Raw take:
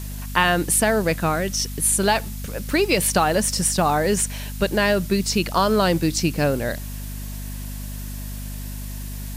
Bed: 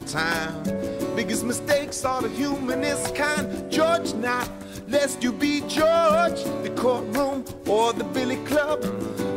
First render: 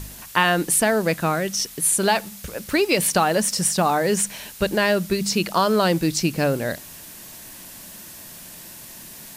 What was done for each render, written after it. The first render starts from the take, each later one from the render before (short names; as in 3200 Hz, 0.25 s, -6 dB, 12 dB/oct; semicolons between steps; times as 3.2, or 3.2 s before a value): de-hum 50 Hz, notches 5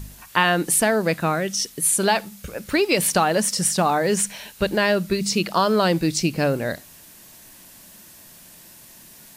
noise print and reduce 6 dB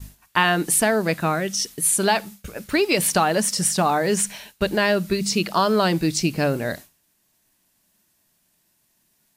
notch 520 Hz, Q 12; expander -33 dBFS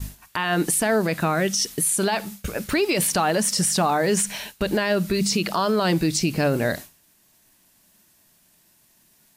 in parallel at +1.5 dB: compressor, threshold -28 dBFS, peak gain reduction 14 dB; on the sum: limiter -12.5 dBFS, peak gain reduction 11 dB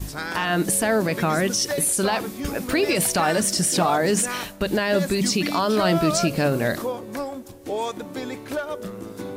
add bed -6.5 dB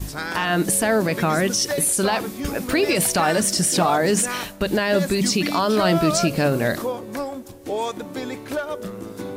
gain +1.5 dB